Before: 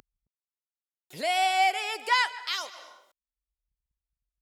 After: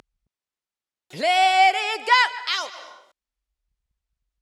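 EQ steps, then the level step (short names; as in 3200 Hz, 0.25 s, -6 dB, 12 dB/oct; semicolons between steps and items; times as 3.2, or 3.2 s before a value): air absorption 54 m; +7.5 dB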